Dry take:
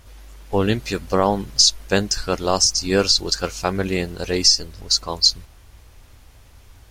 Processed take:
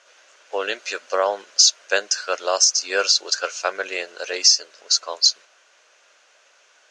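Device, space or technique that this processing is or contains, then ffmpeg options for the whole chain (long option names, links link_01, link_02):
phone speaker on a table: -af "highpass=frequency=490:width=0.5412,highpass=frequency=490:width=1.3066,equalizer=frequency=590:width_type=q:width=4:gain=5,equalizer=frequency=840:width_type=q:width=4:gain=-5,equalizer=frequency=1500:width_type=q:width=4:gain=8,equalizer=frequency=2700:width_type=q:width=4:gain=5,equalizer=frequency=6400:width_type=q:width=4:gain=7,lowpass=frequency=7100:width=0.5412,lowpass=frequency=7100:width=1.3066,volume=-2dB"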